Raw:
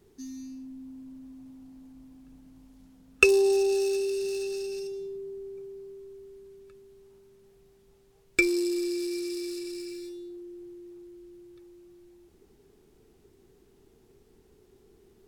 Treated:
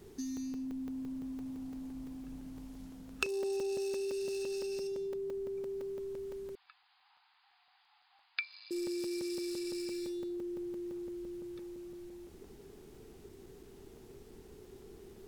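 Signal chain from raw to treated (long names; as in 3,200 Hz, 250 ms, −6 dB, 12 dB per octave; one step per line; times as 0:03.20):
downward compressor 4 to 1, threshold −44 dBFS, peak gain reduction 25.5 dB
0:06.55–0:08.71: linear-phase brick-wall band-pass 710–5,000 Hz
regular buffer underruns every 0.17 s, samples 128, zero, from 0:00.37
level +6.5 dB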